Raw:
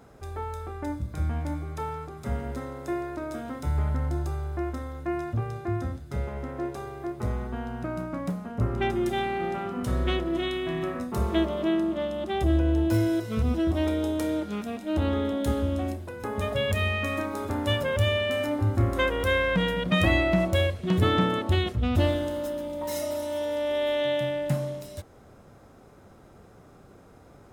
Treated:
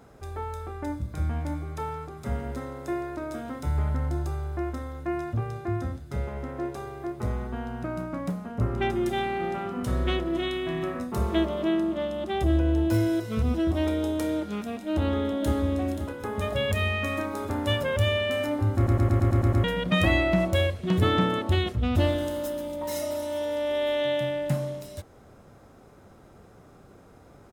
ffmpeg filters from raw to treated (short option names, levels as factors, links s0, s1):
-filter_complex "[0:a]asplit=2[s0][s1];[s1]afade=t=in:st=14.89:d=0.01,afade=t=out:st=15.59:d=0.01,aecho=0:1:530|1060|1590|2120:0.334965|0.133986|0.0535945|0.0214378[s2];[s0][s2]amix=inputs=2:normalize=0,asettb=1/sr,asplit=3[s3][s4][s5];[s3]atrim=end=22.184[s6];[s4]atrim=start=22.18:end=22.76,asetpts=PTS-STARTPTS,afade=t=in:d=0.004:c=qsin,afade=t=out:st=0.576:d=0.004:c=qsin,highshelf=f=5400:g=6.5[s7];[s5]atrim=start=22.756[s8];[s6][s7]acrossfade=d=0.004:c1=hsin:c2=qsin[s9];[s9][s8]acrossfade=d=0.004:c1=qsin:c2=hsin,asplit=9[s10][s11][s12][s13][s14][s15][s16][s17][s18];[s10]atrim=end=18.872[s19];[s11]atrim=start=18.758:end=18.872[s20];[s12]atrim=start=18.758:end=18.872[s21];[s13]atrim=start=18.758:end=18.872[s22];[s14]atrim=start=18.758:end=18.872[s23];[s15]atrim=start=18.758:end=18.872[s24];[s16]atrim=start=18.758:end=18.872[s25];[s17]atrim=start=18.758:end=18.872[s26];[s18]atrim=start=19.638[s27];[s19][s20]acrossfade=d=0.004:c1=hsin:c2=hsin[s28];[s28][s21]acrossfade=d=0.004:c1=hsin:c2=hsin[s29];[s29][s22]acrossfade=d=0.004:c1=hsin:c2=hsin[s30];[s30][s23]acrossfade=d=0.004:c1=hsin:c2=hsin[s31];[s31][s24]acrossfade=d=0.004:c1=hsin:c2=hsin[s32];[s32][s25]acrossfade=d=0.004:c1=hsin:c2=hsin[s33];[s33][s26]acrossfade=d=0.004:c1=hsin:c2=hsin[s34];[s34][s27]acrossfade=d=0.004:c1=hsin:c2=hsin"